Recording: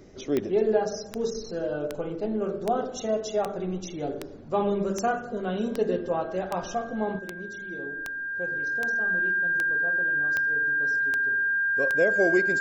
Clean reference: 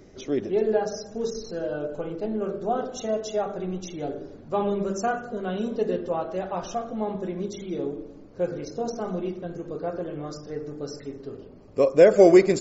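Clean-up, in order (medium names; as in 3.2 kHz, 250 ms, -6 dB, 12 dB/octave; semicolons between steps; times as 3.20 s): de-click; band-stop 1.6 kHz, Q 30; trim 0 dB, from 7.19 s +9.5 dB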